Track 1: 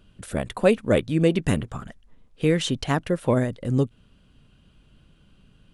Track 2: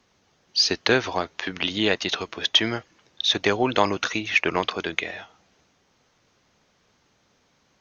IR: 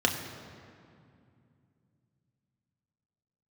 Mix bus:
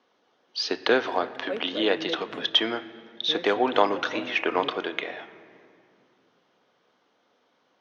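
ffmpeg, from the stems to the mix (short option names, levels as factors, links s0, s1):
-filter_complex "[0:a]adelay=850,volume=0.2,asplit=2[s0][s1];[s1]volume=0.0668[s2];[1:a]volume=0.841,asplit=2[s3][s4];[s4]volume=0.119[s5];[2:a]atrim=start_sample=2205[s6];[s2][s5]amix=inputs=2:normalize=0[s7];[s7][s6]afir=irnorm=-1:irlink=0[s8];[s0][s3][s8]amix=inputs=3:normalize=0,highpass=330,lowpass=3000"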